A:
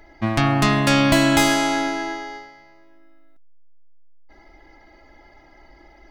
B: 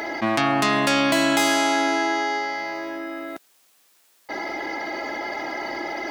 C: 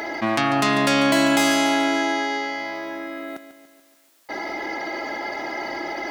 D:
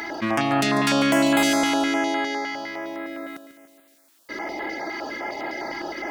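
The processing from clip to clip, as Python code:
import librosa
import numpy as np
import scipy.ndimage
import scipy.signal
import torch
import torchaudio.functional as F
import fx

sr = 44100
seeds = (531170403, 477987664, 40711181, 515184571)

y1 = scipy.signal.sosfilt(scipy.signal.butter(2, 290.0, 'highpass', fs=sr, output='sos'), x)
y1 = fx.env_flatten(y1, sr, amount_pct=70)
y1 = F.gain(torch.from_numpy(y1), -3.5).numpy()
y2 = fx.echo_feedback(y1, sr, ms=144, feedback_pct=55, wet_db=-12.0)
y3 = fx.filter_held_notch(y2, sr, hz=9.8, low_hz=550.0, high_hz=5700.0)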